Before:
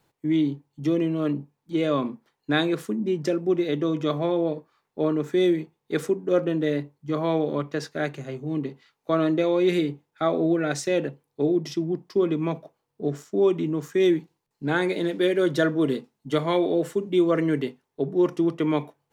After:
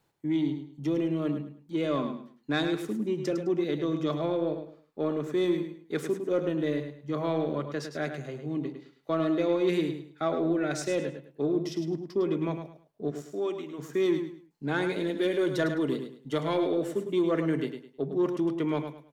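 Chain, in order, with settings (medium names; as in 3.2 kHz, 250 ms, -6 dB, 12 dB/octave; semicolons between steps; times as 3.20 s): 13.10–13.78 s: high-pass 340 Hz -> 1.2 kHz 6 dB/octave; saturation -12.5 dBFS, distortion -23 dB; feedback delay 105 ms, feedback 27%, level -8 dB; trim -4.5 dB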